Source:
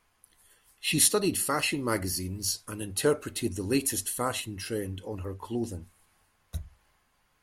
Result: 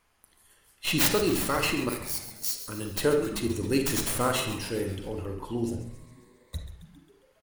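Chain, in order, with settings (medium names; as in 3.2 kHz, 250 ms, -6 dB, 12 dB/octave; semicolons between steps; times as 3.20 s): tracing distortion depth 0.17 ms; 1.89–2.57 s: pre-emphasis filter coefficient 0.97; 3.90–4.53 s: waveshaping leveller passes 1; 5.80–6.56 s: rippled EQ curve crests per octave 1, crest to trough 15 dB; frequency-shifting echo 135 ms, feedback 58%, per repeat -120 Hz, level -12 dB; on a send at -5 dB: reverberation RT60 0.50 s, pre-delay 41 ms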